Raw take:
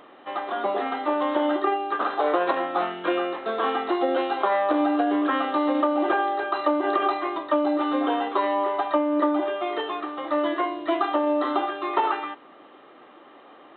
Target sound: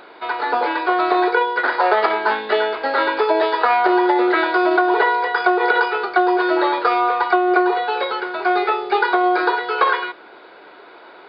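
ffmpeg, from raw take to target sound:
ffmpeg -i in.wav -af "asetrate=53802,aresample=44100,volume=6.5dB" out.wav

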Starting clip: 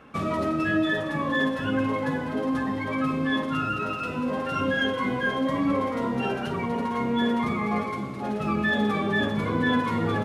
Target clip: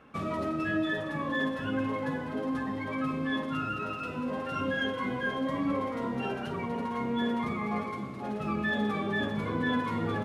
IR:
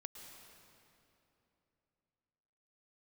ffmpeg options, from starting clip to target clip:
-filter_complex "[0:a]asplit=2[link_01][link_02];[1:a]atrim=start_sample=2205,lowpass=5000[link_03];[link_02][link_03]afir=irnorm=-1:irlink=0,volume=-9.5dB[link_04];[link_01][link_04]amix=inputs=2:normalize=0,volume=-7dB"

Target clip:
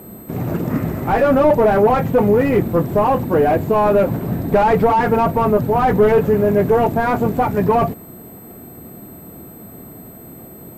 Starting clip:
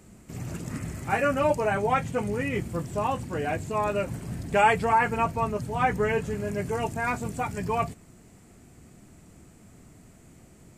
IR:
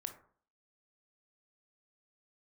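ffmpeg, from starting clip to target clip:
-filter_complex "[0:a]aeval=exprs='val(0)+0.0178*sin(2*PI*12000*n/s)':channel_layout=same,asplit=2[link_01][link_02];[link_02]highpass=frequency=720:poles=1,volume=34dB,asoftclip=type=tanh:threshold=-8dB[link_03];[link_01][link_03]amix=inputs=2:normalize=0,lowpass=frequency=1400:poles=1,volume=-6dB,tiltshelf=frequency=1200:gain=9.5,volume=-1.5dB"

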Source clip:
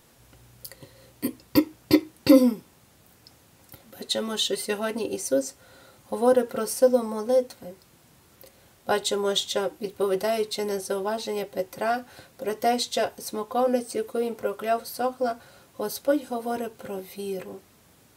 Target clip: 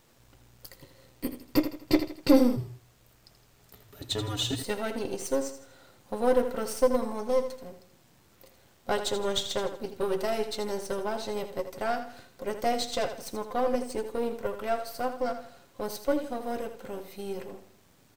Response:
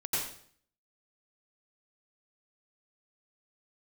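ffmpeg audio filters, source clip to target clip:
-filter_complex "[0:a]aeval=exprs='if(lt(val(0),0),0.447*val(0),val(0))':channel_layout=same,equalizer=frequency=11000:width=2.4:gain=-8,asplit=2[link_01][link_02];[link_02]aecho=0:1:81|162|243|324:0.316|0.12|0.0457|0.0174[link_03];[link_01][link_03]amix=inputs=2:normalize=0,asplit=3[link_04][link_05][link_06];[link_04]afade=type=out:start_time=2.56:duration=0.02[link_07];[link_05]afreqshift=-120,afade=type=in:start_time=2.56:duration=0.02,afade=type=out:start_time=4.62:duration=0.02[link_08];[link_06]afade=type=in:start_time=4.62:duration=0.02[link_09];[link_07][link_08][link_09]amix=inputs=3:normalize=0,volume=-2dB"

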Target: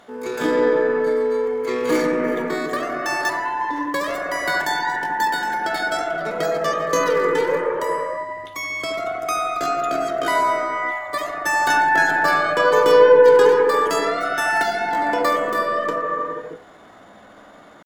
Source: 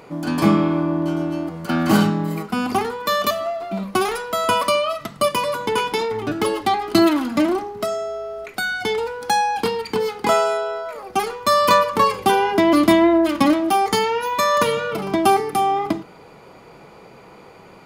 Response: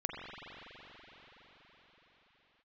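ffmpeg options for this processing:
-filter_complex "[0:a]asetrate=66075,aresample=44100,atempo=0.66742,aeval=exprs='0.75*(cos(1*acos(clip(val(0)/0.75,-1,1)))-cos(1*PI/2))+0.0168*(cos(2*acos(clip(val(0)/0.75,-1,1)))-cos(2*PI/2))':channel_layout=same[link_01];[1:a]atrim=start_sample=2205,afade=type=out:start_time=0.43:duration=0.01,atrim=end_sample=19404,asetrate=26460,aresample=44100[link_02];[link_01][link_02]afir=irnorm=-1:irlink=0,volume=-7dB"

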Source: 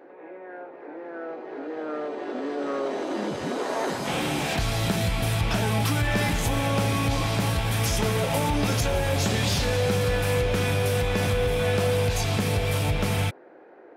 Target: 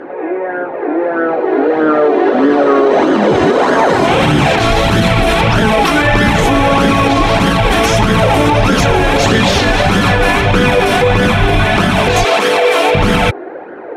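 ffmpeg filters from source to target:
ffmpeg -i in.wav -filter_complex "[0:a]asettb=1/sr,asplit=3[link_01][link_02][link_03];[link_01]atrim=end=12.244[link_04];[link_02]atrim=start=12.24:end=12.95,asetpts=PTS-STARTPTS,afade=type=in:duration=0.004:curve=qsin,afade=type=out:start_time=0.706:duration=0.004:curve=qsin,highpass=frequency=360:width=0.5412,highpass=frequency=360:width=1.3066[link_05];[link_03]atrim=start=12.946[link_06];[link_04][link_05]acrossfade=duration=0.004:curve1=hsin:curve2=qsin[link_07];[link_07][link_06]acrossfade=duration=0.004:curve1=qsin:curve2=hsin,afftfilt=real='re*lt(hypot(re,im),0.398)':imag='im*lt(hypot(re,im),0.398)':win_size=1024:overlap=0.75,aemphasis=mode=reproduction:type=75fm,bandreject=frequency=4800:width=17,flanger=delay=0.6:depth=2.3:regen=24:speed=1.6:shape=sinusoidal,alimiter=level_in=27dB:limit=-1dB:release=50:level=0:latency=1,volume=-1dB" out.wav

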